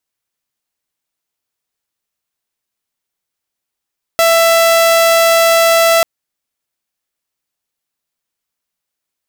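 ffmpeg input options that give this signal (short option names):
-f lavfi -i "aevalsrc='0.562*(2*mod(665*t,1)-1)':d=1.84:s=44100"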